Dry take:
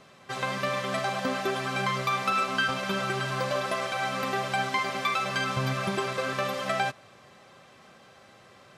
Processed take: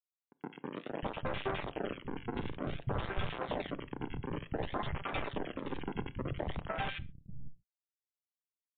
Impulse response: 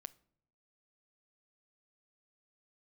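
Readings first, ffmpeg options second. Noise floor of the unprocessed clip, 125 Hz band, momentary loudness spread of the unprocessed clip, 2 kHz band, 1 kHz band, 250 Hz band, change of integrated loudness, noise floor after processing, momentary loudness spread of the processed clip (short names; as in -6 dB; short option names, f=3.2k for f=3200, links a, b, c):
-54 dBFS, -6.0 dB, 3 LU, -15.0 dB, -13.5 dB, -5.0 dB, -11.0 dB, under -85 dBFS, 8 LU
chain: -filter_complex "[0:a]highpass=f=110:w=0.5412,highpass=f=110:w=1.3066,equalizer=f=1.1k:w=2.5:g=-4.5,asplit=2[a][b];[b]acompressor=threshold=-43dB:ratio=8,volume=0.5dB[c];[a][c]amix=inputs=2:normalize=0,acrusher=bits=3:mix=0:aa=0.000001,flanger=delay=5.3:depth=5.4:regen=-21:speed=0.31:shape=triangular,acrusher=samples=41:mix=1:aa=0.000001:lfo=1:lforange=65.6:lforate=0.55,acrossover=split=180|1800[d][e][f];[f]adelay=90[g];[d]adelay=590[h];[h][e][g]amix=inputs=3:normalize=0[i];[1:a]atrim=start_sample=2205,afade=t=out:st=0.19:d=0.01,atrim=end_sample=8820[j];[i][j]afir=irnorm=-1:irlink=0,volume=2dB" -ar 8000 -c:a libmp3lame -b:a 40k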